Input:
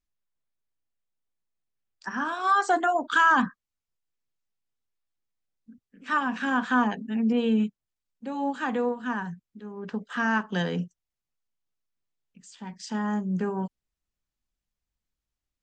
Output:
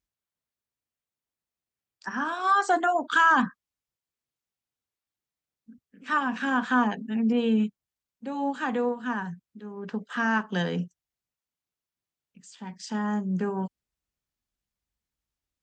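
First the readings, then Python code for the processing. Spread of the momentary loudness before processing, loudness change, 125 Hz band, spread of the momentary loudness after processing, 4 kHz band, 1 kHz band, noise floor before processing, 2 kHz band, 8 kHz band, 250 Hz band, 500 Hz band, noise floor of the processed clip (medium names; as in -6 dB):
17 LU, 0.0 dB, 0.0 dB, 17 LU, 0.0 dB, 0.0 dB, under -85 dBFS, 0.0 dB, no reading, 0.0 dB, 0.0 dB, under -85 dBFS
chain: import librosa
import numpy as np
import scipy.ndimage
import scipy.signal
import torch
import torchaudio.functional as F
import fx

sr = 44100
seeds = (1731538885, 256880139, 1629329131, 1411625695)

y = scipy.signal.sosfilt(scipy.signal.butter(2, 44.0, 'highpass', fs=sr, output='sos'), x)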